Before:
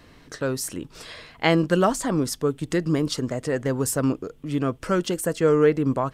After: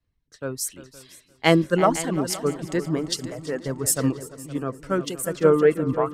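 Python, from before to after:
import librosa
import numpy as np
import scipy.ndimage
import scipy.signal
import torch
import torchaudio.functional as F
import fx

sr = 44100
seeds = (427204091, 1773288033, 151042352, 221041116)

y = fx.dereverb_blind(x, sr, rt60_s=1.2)
y = fx.echo_heads(y, sr, ms=173, heads='second and third', feedback_pct=46, wet_db=-11)
y = fx.band_widen(y, sr, depth_pct=100)
y = F.gain(torch.from_numpy(y), -1.0).numpy()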